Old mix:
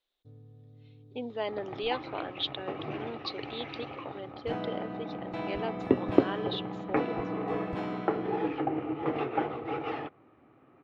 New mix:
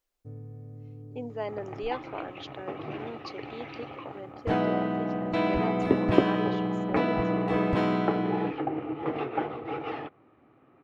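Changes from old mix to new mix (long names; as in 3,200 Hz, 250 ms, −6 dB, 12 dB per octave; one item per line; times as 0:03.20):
speech: remove low-pass with resonance 3,700 Hz, resonance Q 8.3
first sound +10.0 dB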